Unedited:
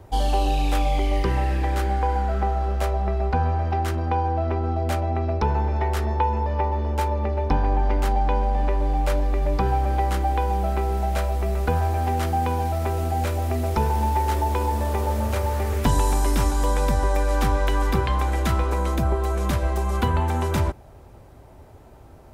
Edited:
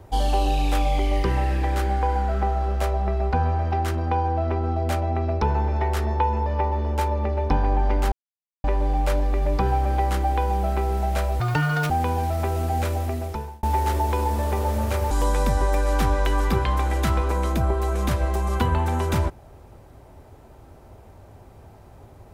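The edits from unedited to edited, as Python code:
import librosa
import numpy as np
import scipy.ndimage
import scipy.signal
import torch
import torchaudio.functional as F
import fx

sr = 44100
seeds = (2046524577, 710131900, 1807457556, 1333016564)

y = fx.edit(x, sr, fx.silence(start_s=8.12, length_s=0.52),
    fx.speed_span(start_s=11.4, length_s=0.92, speed=1.84),
    fx.fade_out_span(start_s=13.35, length_s=0.7),
    fx.cut(start_s=15.53, length_s=1.0), tone=tone)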